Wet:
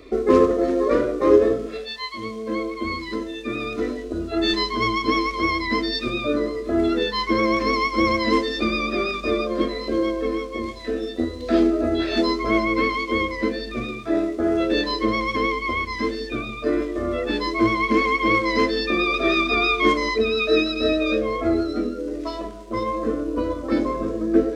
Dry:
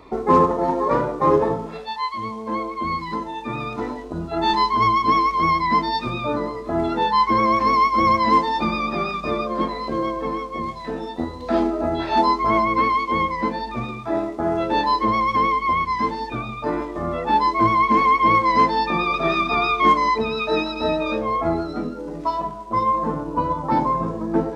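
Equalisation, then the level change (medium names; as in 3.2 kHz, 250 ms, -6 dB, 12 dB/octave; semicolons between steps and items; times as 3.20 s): static phaser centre 370 Hz, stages 4; +4.5 dB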